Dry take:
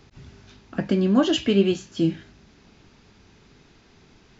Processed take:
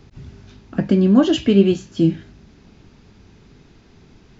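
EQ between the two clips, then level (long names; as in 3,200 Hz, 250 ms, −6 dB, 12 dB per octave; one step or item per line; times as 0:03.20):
low-shelf EQ 440 Hz +8 dB
0.0 dB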